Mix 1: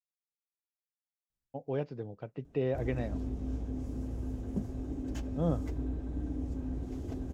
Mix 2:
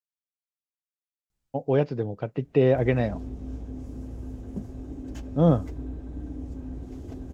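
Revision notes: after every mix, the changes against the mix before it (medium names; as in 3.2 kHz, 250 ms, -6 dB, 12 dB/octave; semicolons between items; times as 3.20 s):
speech +11.5 dB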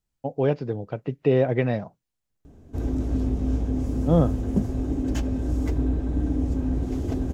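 speech: entry -1.30 s; background +11.5 dB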